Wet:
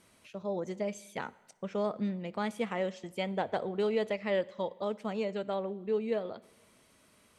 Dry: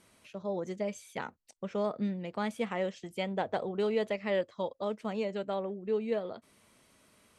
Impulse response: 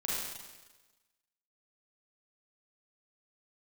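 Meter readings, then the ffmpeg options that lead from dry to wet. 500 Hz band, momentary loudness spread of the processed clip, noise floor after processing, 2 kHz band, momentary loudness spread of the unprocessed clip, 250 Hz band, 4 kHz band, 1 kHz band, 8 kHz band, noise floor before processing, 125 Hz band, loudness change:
0.0 dB, 10 LU, -65 dBFS, 0.0 dB, 10 LU, 0.0 dB, 0.0 dB, 0.0 dB, n/a, -67 dBFS, 0.0 dB, 0.0 dB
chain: -filter_complex "[0:a]asplit=2[a][b];[1:a]atrim=start_sample=2205,adelay=12[c];[b][c]afir=irnorm=-1:irlink=0,volume=-25.5dB[d];[a][d]amix=inputs=2:normalize=0"

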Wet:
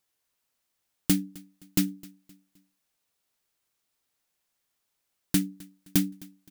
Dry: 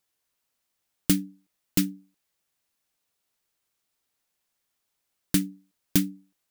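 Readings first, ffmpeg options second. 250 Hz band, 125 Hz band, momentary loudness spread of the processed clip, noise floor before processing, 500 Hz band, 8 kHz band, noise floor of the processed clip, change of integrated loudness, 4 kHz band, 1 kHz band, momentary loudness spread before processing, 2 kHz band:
-1.0 dB, -1.0 dB, 16 LU, -80 dBFS, -2.0 dB, -1.5 dB, -79 dBFS, -1.0 dB, -1.5 dB, 0.0 dB, 10 LU, -1.5 dB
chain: -filter_complex "[0:a]asoftclip=type=tanh:threshold=-10.5dB,asplit=2[a][b];[b]aecho=0:1:260|520|780:0.075|0.0292|0.0114[c];[a][c]amix=inputs=2:normalize=0"

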